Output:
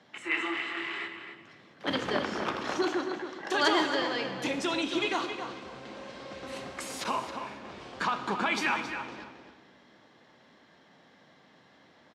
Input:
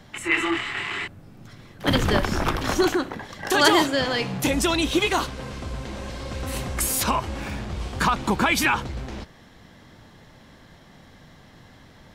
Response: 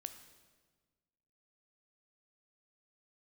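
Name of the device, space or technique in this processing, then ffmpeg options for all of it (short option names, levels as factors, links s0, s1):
supermarket ceiling speaker: -filter_complex "[0:a]highpass=260,lowpass=5200[s0];[1:a]atrim=start_sample=2205[s1];[s0][s1]afir=irnorm=-1:irlink=0,asettb=1/sr,asplit=3[s2][s3][s4];[s2]atrim=end=7.044[s5];[s3]atrim=start=7.04:end=7.65,asetpts=PTS-STARTPTS,afade=t=in:d=0.004:c=qsin,afade=t=out:st=0.606:d=0.004:c=qsin,agate=range=0.0224:threshold=0.02:ratio=3:detection=peak[s6];[s4]atrim=start=7.646[s7];[s5][s6]acrossfade=d=0.004:c1=hsin:c2=qsin[s8];[s8][s7]acrossfade=d=0.004:c1=qsin:c2=hsin,asplit=2[s9][s10];[s10]adelay=270,lowpass=f=4400:p=1,volume=0.398,asplit=2[s11][s12];[s12]adelay=270,lowpass=f=4400:p=1,volume=0.23,asplit=2[s13][s14];[s14]adelay=270,lowpass=f=4400:p=1,volume=0.23[s15];[s9][s11][s13][s15]amix=inputs=4:normalize=0,volume=0.668"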